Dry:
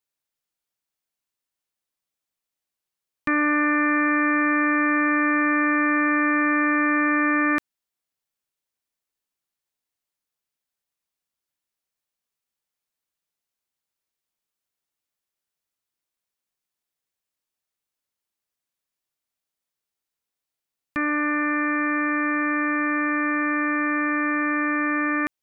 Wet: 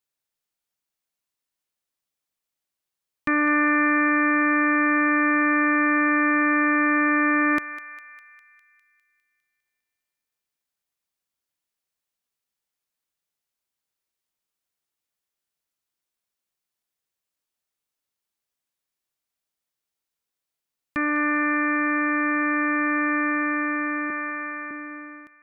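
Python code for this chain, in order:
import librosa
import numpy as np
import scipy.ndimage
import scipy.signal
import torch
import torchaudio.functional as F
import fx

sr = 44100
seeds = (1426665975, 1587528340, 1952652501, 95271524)

y = fx.fade_out_tail(x, sr, length_s=2.28)
y = fx.highpass(y, sr, hz=390.0, slope=12, at=(24.1, 24.71))
y = fx.echo_thinned(y, sr, ms=202, feedback_pct=66, hz=1100.0, wet_db=-12.0)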